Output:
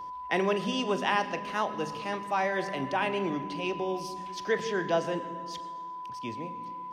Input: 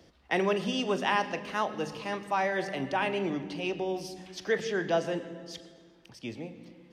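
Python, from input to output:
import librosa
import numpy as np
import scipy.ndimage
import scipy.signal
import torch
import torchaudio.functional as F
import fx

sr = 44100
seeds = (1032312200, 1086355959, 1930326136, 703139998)

y = x + 10.0 ** (-37.0 / 20.0) * np.sin(2.0 * np.pi * 1000.0 * np.arange(len(x)) / sr)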